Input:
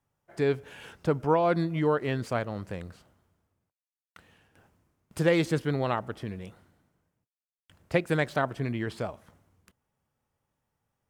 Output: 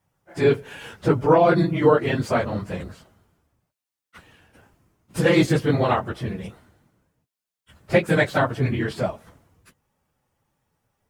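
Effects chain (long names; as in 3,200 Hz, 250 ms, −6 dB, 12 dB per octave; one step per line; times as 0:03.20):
random phases in long frames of 50 ms
level +7.5 dB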